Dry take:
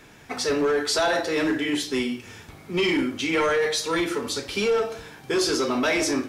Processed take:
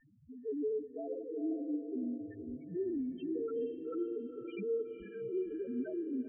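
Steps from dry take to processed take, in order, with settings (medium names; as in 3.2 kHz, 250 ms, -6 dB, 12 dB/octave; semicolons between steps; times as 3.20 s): low-pass that closes with the level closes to 1.1 kHz, closed at -19.5 dBFS; peaking EQ 960 Hz +3 dB 1.2 oct; in parallel at -8.5 dB: integer overflow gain 29.5 dB; on the sum: static phaser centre 2 kHz, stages 4; loudest bins only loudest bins 1; distance through air 240 m; on a send: echo that smears into a reverb 498 ms, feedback 46%, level -7.5 dB; on the sum: trim -3.5 dB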